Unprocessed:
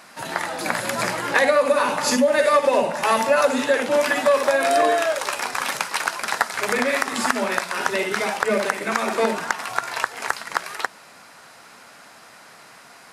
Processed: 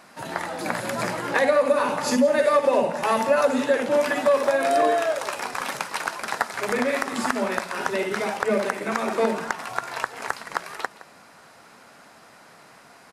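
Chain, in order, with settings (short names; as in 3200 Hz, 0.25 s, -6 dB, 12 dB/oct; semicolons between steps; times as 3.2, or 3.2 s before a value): tilt shelf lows +3.5 dB; on a send: echo 0.166 s -17.5 dB; on the sum: gain -3 dB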